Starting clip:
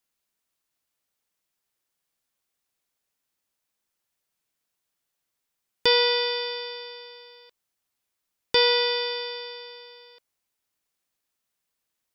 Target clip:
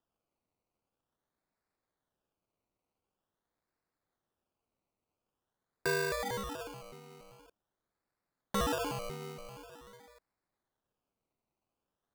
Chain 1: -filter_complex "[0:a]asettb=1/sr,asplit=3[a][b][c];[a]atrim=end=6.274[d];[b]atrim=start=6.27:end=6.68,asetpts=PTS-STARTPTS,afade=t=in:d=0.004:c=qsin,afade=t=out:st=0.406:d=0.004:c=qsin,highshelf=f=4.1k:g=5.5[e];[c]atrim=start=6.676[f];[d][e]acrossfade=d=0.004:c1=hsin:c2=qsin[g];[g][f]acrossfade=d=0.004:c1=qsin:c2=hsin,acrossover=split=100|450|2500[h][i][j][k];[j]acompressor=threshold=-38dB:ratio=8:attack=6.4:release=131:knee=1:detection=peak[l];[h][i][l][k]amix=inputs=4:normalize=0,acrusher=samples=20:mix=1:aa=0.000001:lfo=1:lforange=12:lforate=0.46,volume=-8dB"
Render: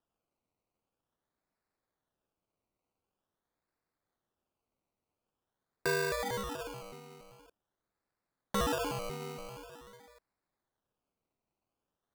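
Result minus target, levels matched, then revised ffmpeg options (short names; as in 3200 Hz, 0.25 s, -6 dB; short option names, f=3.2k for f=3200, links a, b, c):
compressor: peak gain reduction -10 dB
-filter_complex "[0:a]asettb=1/sr,asplit=3[a][b][c];[a]atrim=end=6.274[d];[b]atrim=start=6.27:end=6.68,asetpts=PTS-STARTPTS,afade=t=in:d=0.004:c=qsin,afade=t=out:st=0.406:d=0.004:c=qsin,highshelf=f=4.1k:g=5.5[e];[c]atrim=start=6.676[f];[d][e]acrossfade=d=0.004:c1=hsin:c2=qsin[g];[g][f]acrossfade=d=0.004:c1=qsin:c2=hsin,acrossover=split=100|450|2500[h][i][j][k];[j]acompressor=threshold=-49.5dB:ratio=8:attack=6.4:release=131:knee=1:detection=peak[l];[h][i][l][k]amix=inputs=4:normalize=0,acrusher=samples=20:mix=1:aa=0.000001:lfo=1:lforange=12:lforate=0.46,volume=-8dB"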